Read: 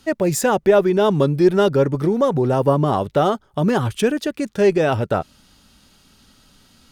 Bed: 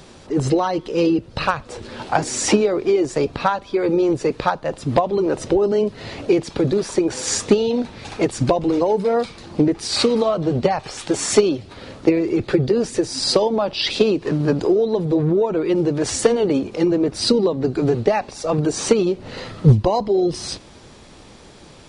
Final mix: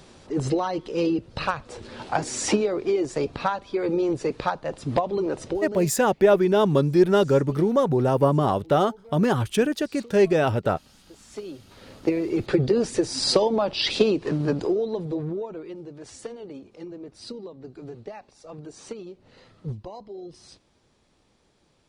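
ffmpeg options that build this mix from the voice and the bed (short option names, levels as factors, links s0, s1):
-filter_complex "[0:a]adelay=5550,volume=0.708[s0];[1:a]volume=10,afade=t=out:st=5.22:d=0.79:silence=0.0707946,afade=t=in:st=11.31:d=1.34:silence=0.0501187,afade=t=out:st=13.96:d=1.82:silence=0.125893[s1];[s0][s1]amix=inputs=2:normalize=0"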